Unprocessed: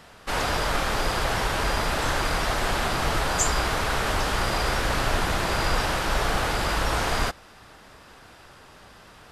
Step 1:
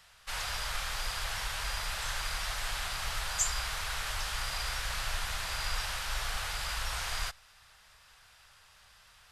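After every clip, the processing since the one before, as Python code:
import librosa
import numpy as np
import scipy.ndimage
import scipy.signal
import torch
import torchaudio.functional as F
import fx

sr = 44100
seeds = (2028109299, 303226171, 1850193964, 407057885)

y = fx.tone_stack(x, sr, knobs='10-0-10')
y = F.gain(torch.from_numpy(y), -4.0).numpy()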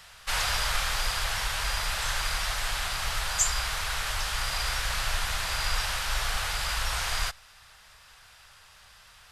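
y = fx.rider(x, sr, range_db=10, speed_s=2.0)
y = F.gain(torch.from_numpy(y), 5.5).numpy()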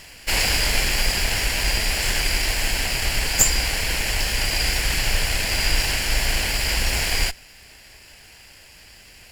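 y = fx.lower_of_two(x, sr, delay_ms=0.4)
y = F.gain(torch.from_numpy(y), 9.0).numpy()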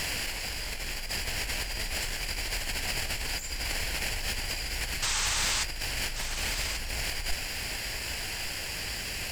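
y = fx.over_compress(x, sr, threshold_db=-33.0, ratio=-1.0)
y = fx.spec_paint(y, sr, seeds[0], shape='noise', start_s=5.02, length_s=0.62, low_hz=790.0, high_hz=8600.0, level_db=-30.0)
y = y + 10.0 ** (-9.5 / 20.0) * np.pad(y, (int(1135 * sr / 1000.0), 0))[:len(y)]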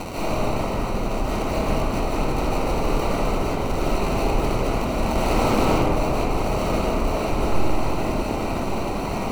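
y = fx.sample_hold(x, sr, seeds[1], rate_hz=1700.0, jitter_pct=0)
y = fx.rev_freeverb(y, sr, rt60_s=2.5, hf_ratio=0.3, predelay_ms=110, drr_db=-9.0)
y = fx.doppler_dist(y, sr, depth_ms=0.14)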